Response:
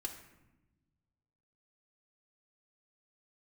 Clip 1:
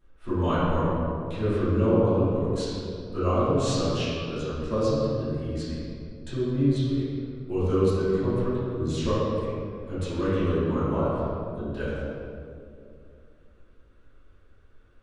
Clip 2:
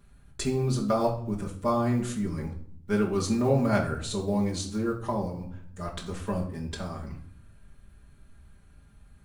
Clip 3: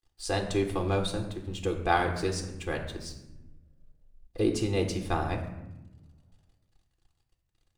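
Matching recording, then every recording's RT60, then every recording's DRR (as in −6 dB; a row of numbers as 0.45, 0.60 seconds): 3; 2.5, 0.60, 1.0 seconds; −15.0, −4.0, 3.0 decibels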